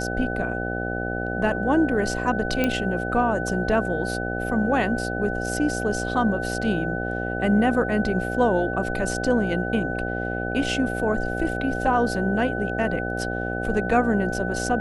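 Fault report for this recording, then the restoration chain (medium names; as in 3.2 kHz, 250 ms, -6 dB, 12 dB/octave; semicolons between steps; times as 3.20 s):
buzz 60 Hz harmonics 13 -29 dBFS
whine 1.5 kHz -30 dBFS
2.64 s: pop -9 dBFS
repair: de-click; band-stop 1.5 kHz, Q 30; de-hum 60 Hz, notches 13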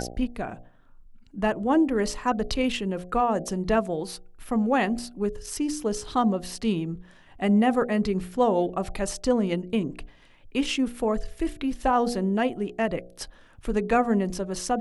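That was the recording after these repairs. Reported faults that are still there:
nothing left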